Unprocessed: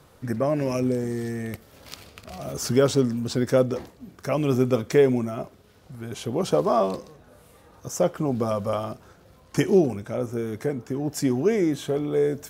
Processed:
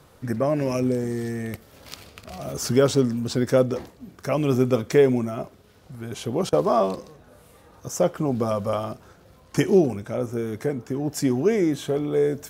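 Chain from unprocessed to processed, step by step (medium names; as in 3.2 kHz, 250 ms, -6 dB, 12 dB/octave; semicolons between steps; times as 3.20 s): 6.49–6.97 s: gate -27 dBFS, range -16 dB; trim +1 dB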